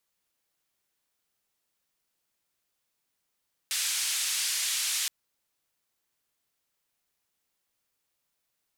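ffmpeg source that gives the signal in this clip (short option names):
-f lavfi -i "anoisesrc=c=white:d=1.37:r=44100:seed=1,highpass=f=2300,lowpass=f=9400,volume=-19.8dB"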